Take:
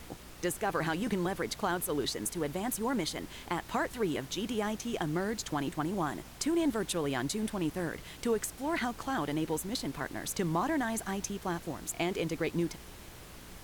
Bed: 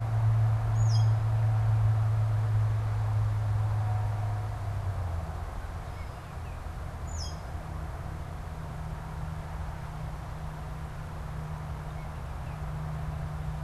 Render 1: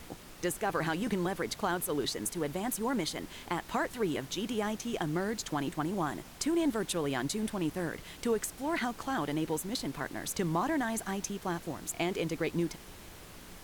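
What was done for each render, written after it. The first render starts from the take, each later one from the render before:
hum removal 60 Hz, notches 2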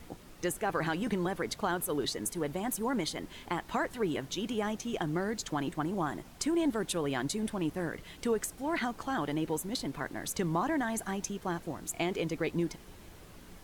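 broadband denoise 6 dB, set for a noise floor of −50 dBFS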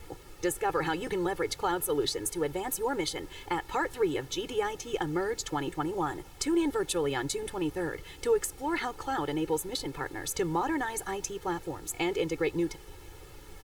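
comb filter 2.3 ms, depth 91%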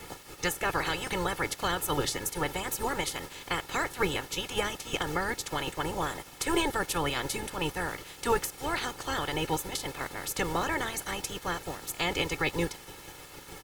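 ceiling on every frequency bin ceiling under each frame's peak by 20 dB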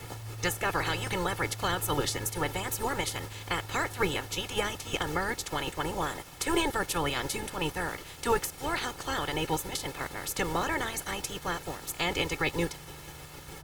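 mix in bed −16.5 dB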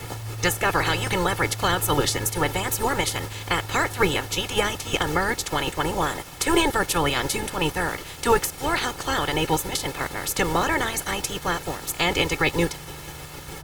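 level +7.5 dB

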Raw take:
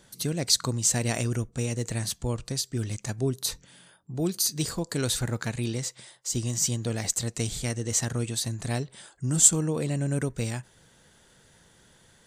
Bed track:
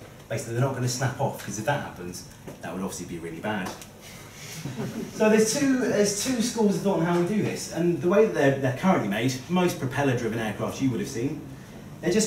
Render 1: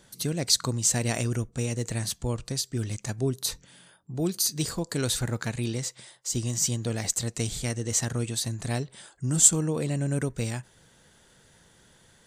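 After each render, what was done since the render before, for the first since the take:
no processing that can be heard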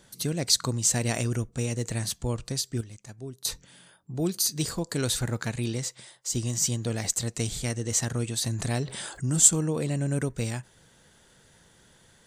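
0:02.81–0:03.45: clip gain −12 dB
0:08.42–0:09.30: envelope flattener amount 50%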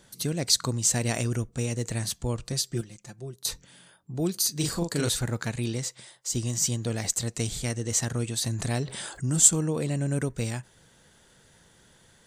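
0:02.52–0:03.36: comb filter 5.7 ms
0:04.57–0:05.09: double-tracking delay 41 ms −3.5 dB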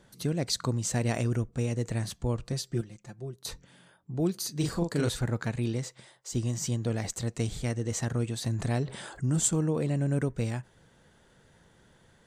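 high-shelf EQ 3,100 Hz −11.5 dB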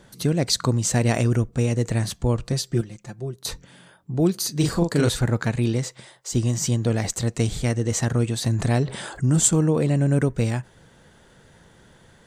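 level +8 dB

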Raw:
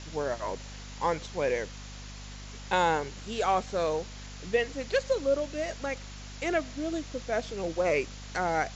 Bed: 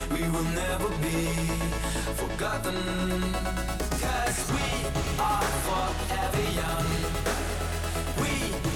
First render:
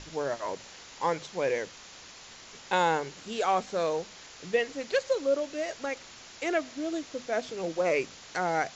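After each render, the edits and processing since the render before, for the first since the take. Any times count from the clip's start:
mains-hum notches 50/100/150/200/250 Hz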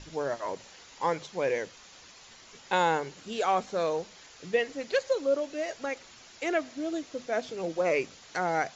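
broadband denoise 6 dB, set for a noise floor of −49 dBFS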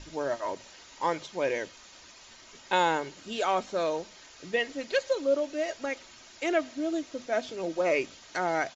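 comb filter 3.2 ms, depth 33%
dynamic equaliser 3,200 Hz, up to +3 dB, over −48 dBFS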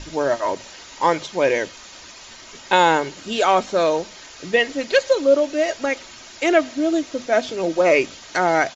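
level +10.5 dB
brickwall limiter −3 dBFS, peak gain reduction 1.5 dB

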